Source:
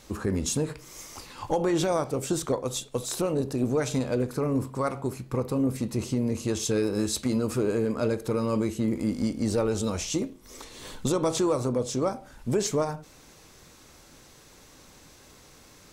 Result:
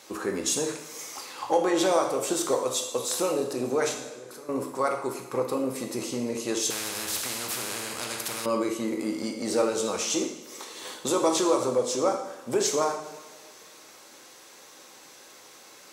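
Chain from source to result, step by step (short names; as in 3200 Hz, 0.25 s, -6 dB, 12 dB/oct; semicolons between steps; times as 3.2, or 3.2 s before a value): HPF 380 Hz 12 dB/oct; 3.94–4.49 level quantiser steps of 24 dB; two-slope reverb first 0.84 s, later 2.5 s, DRR 2.5 dB; 6.7–8.46 spectral compressor 4:1; gain +2.5 dB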